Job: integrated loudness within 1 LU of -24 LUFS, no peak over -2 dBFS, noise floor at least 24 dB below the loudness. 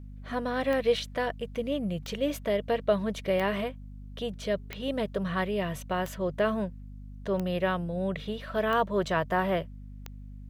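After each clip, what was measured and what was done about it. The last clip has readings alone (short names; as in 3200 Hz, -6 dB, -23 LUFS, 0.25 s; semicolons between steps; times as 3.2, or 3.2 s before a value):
clicks 8; hum 50 Hz; harmonics up to 250 Hz; hum level -41 dBFS; loudness -30.0 LUFS; peak -13.5 dBFS; loudness target -24.0 LUFS
-> de-click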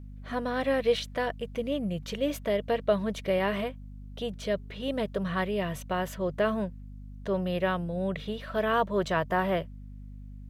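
clicks 0; hum 50 Hz; harmonics up to 250 Hz; hum level -41 dBFS
-> de-hum 50 Hz, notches 5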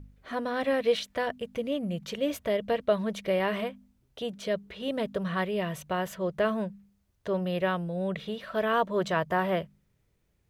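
hum none; loudness -30.0 LUFS; peak -14.0 dBFS; loudness target -24.0 LUFS
-> gain +6 dB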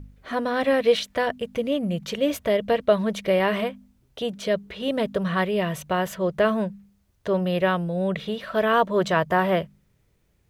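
loudness -24.0 LUFS; peak -8.0 dBFS; noise floor -65 dBFS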